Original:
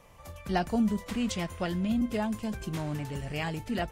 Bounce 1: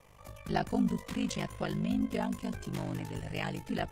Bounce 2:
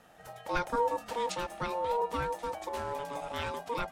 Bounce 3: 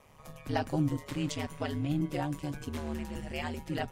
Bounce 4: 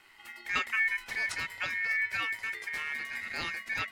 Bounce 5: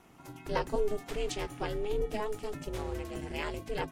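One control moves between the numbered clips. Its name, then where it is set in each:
ring modulator, frequency: 25, 710, 74, 2000, 210 Hz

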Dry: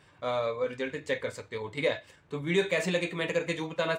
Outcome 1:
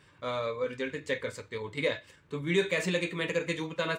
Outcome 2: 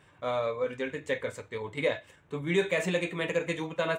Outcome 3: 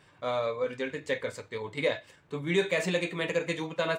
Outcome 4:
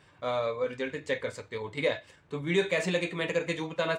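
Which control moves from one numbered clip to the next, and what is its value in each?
bell, frequency: 720, 4700, 71, 14000 Hz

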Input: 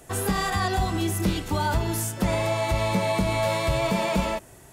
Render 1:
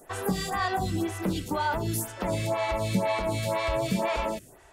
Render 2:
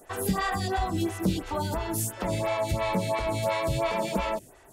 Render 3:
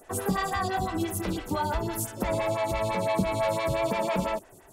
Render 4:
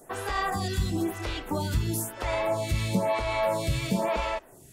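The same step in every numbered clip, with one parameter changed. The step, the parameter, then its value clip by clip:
photocell phaser, rate: 2, 2.9, 5.9, 1 Hz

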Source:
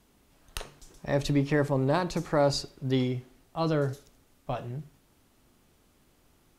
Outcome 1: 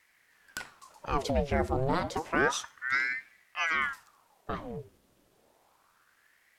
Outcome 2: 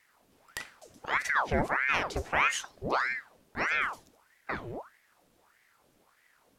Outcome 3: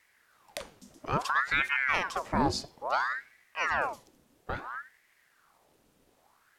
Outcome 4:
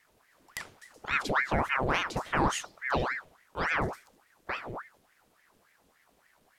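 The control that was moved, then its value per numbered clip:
ring modulator with a swept carrier, at: 0.3, 1.6, 0.59, 3.5 Hz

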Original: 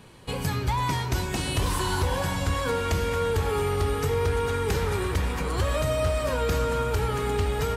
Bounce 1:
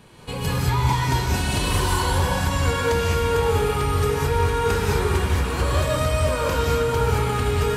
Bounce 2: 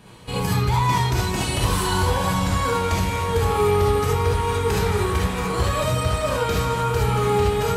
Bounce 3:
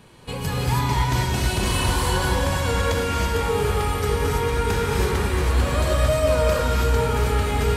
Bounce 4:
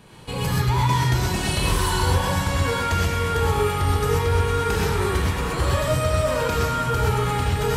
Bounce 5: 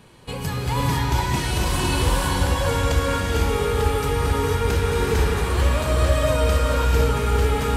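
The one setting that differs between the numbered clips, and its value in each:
non-linear reverb, gate: 230, 90, 350, 150, 530 ms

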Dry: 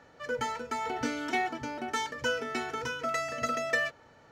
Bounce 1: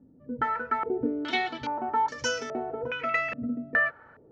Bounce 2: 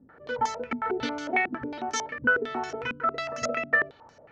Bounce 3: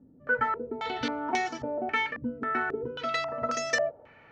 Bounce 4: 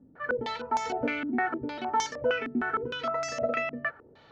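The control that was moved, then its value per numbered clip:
stepped low-pass, rate: 2.4, 11, 3.7, 6.5 Hz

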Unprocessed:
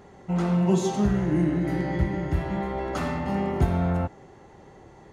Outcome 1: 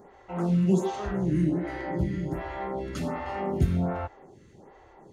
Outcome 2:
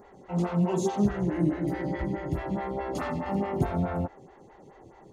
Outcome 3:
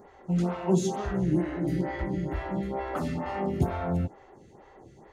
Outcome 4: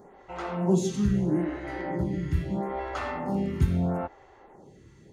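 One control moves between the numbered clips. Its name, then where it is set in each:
photocell phaser, rate: 1.3, 4.7, 2.2, 0.77 Hz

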